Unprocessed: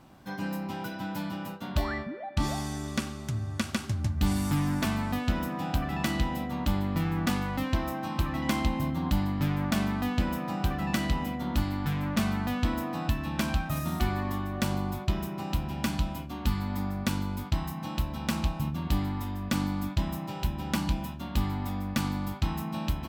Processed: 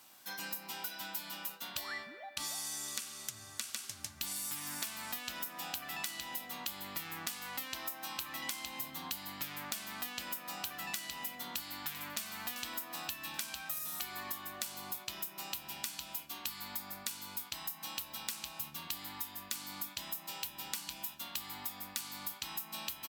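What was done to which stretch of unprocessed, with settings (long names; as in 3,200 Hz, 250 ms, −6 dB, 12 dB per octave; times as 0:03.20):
0:11.50–0:12.26: delay throw 390 ms, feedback 40%, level −14.5 dB
whole clip: first difference; downward compressor 10 to 1, threshold −46 dBFS; level +10 dB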